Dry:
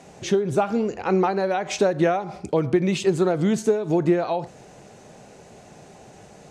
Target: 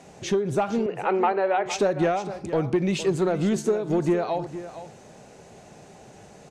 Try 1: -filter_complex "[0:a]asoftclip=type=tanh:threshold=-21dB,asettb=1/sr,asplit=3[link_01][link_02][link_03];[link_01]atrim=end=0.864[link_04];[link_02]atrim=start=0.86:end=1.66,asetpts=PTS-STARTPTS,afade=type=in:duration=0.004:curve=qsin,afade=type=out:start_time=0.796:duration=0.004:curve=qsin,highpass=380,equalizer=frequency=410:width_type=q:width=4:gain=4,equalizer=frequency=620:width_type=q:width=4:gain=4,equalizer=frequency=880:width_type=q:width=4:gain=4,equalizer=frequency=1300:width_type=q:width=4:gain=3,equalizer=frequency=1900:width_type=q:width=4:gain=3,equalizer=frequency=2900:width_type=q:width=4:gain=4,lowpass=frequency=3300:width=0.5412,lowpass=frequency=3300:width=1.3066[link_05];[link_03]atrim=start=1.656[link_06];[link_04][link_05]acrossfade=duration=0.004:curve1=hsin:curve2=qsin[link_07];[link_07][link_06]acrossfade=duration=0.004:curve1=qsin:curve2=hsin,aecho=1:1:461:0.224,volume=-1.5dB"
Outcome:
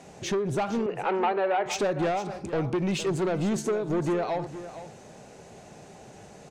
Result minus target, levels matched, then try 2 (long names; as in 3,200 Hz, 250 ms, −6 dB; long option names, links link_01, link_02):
soft clipping: distortion +10 dB
-filter_complex "[0:a]asoftclip=type=tanh:threshold=-12dB,asettb=1/sr,asplit=3[link_01][link_02][link_03];[link_01]atrim=end=0.864[link_04];[link_02]atrim=start=0.86:end=1.66,asetpts=PTS-STARTPTS,afade=type=in:duration=0.004:curve=qsin,afade=type=out:start_time=0.796:duration=0.004:curve=qsin,highpass=380,equalizer=frequency=410:width_type=q:width=4:gain=4,equalizer=frequency=620:width_type=q:width=4:gain=4,equalizer=frequency=880:width_type=q:width=4:gain=4,equalizer=frequency=1300:width_type=q:width=4:gain=3,equalizer=frequency=1900:width_type=q:width=4:gain=3,equalizer=frequency=2900:width_type=q:width=4:gain=4,lowpass=frequency=3300:width=0.5412,lowpass=frequency=3300:width=1.3066[link_05];[link_03]atrim=start=1.656[link_06];[link_04][link_05]acrossfade=duration=0.004:curve1=hsin:curve2=qsin[link_07];[link_07][link_06]acrossfade=duration=0.004:curve1=qsin:curve2=hsin,aecho=1:1:461:0.224,volume=-1.5dB"